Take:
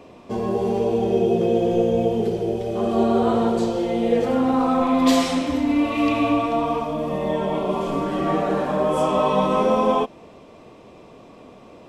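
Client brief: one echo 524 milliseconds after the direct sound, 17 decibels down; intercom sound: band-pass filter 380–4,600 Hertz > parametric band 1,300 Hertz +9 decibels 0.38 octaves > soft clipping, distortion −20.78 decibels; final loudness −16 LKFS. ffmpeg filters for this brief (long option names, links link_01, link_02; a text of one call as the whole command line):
ffmpeg -i in.wav -af "highpass=380,lowpass=4600,equalizer=frequency=1300:width_type=o:width=0.38:gain=9,aecho=1:1:524:0.141,asoftclip=threshold=-12dB,volume=7dB" out.wav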